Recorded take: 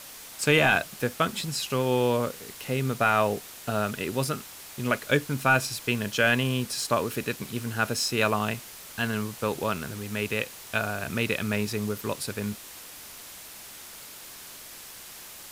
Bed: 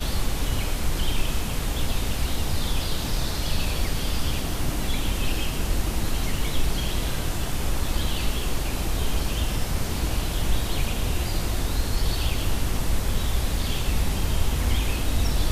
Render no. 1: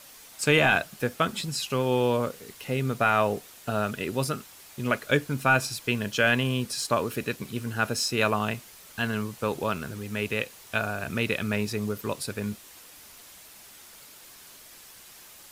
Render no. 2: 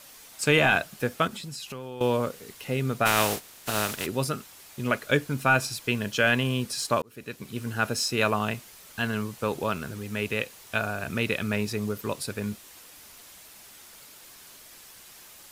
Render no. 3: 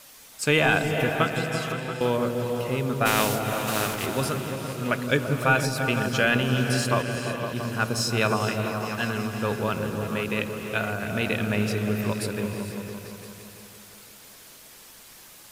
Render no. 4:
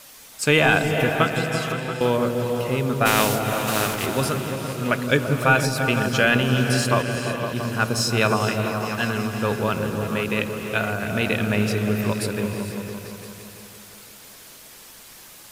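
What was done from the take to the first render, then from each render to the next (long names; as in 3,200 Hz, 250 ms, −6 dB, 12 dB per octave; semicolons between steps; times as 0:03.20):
broadband denoise 6 dB, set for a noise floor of −44 dBFS
0:01.27–0:02.01: downward compressor 5 to 1, threshold −35 dBFS; 0:03.05–0:04.05: compressing power law on the bin magnitudes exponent 0.47; 0:07.02–0:07.67: fade in
on a send: echo whose low-pass opens from repeat to repeat 170 ms, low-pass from 400 Hz, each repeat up 1 octave, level −3 dB; on the sum: reverb whose tail is shaped and stops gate 490 ms rising, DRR 8.5 dB
level +3.5 dB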